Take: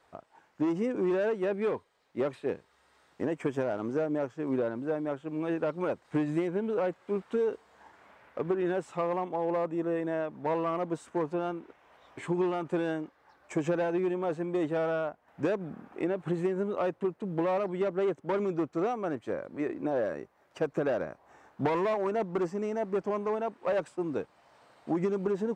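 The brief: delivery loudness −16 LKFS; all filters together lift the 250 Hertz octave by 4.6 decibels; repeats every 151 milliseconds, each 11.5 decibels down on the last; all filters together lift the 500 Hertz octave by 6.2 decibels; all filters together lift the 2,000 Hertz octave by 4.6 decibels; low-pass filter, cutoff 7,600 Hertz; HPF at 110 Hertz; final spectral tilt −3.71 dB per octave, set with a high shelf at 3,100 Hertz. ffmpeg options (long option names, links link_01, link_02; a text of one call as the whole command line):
ffmpeg -i in.wav -af "highpass=110,lowpass=7600,equalizer=frequency=250:width_type=o:gain=3.5,equalizer=frequency=500:width_type=o:gain=6.5,equalizer=frequency=2000:width_type=o:gain=4.5,highshelf=frequency=3100:gain=3.5,aecho=1:1:151|302|453:0.266|0.0718|0.0194,volume=10dB" out.wav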